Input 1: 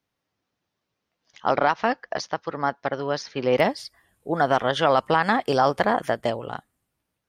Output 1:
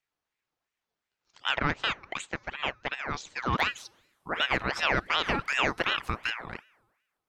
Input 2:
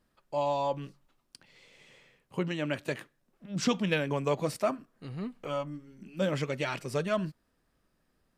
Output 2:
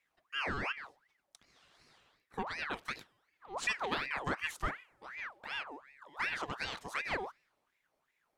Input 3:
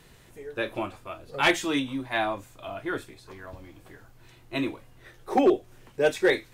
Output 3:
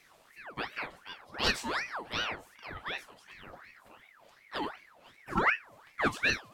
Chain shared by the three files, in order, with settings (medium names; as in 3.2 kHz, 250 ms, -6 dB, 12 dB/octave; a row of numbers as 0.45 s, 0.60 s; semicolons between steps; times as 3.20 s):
feedback comb 230 Hz, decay 1.2 s, mix 40%; ring modulator with a swept carrier 1.4 kHz, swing 60%, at 2.7 Hz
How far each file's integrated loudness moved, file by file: -6.0 LU, -5.5 LU, -6.0 LU